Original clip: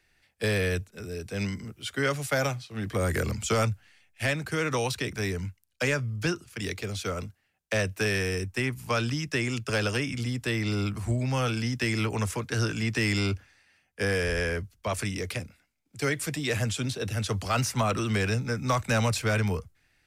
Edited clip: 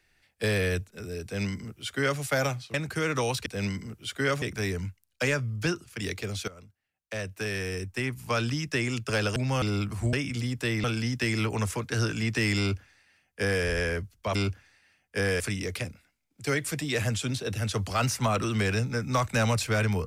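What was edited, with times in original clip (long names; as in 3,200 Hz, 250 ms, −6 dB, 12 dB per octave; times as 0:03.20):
0:01.24–0:02.20: duplicate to 0:05.02
0:02.74–0:04.30: remove
0:07.08–0:09.08: fade in linear, from −18.5 dB
0:09.96–0:10.67: swap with 0:11.18–0:11.44
0:13.19–0:14.24: duplicate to 0:14.95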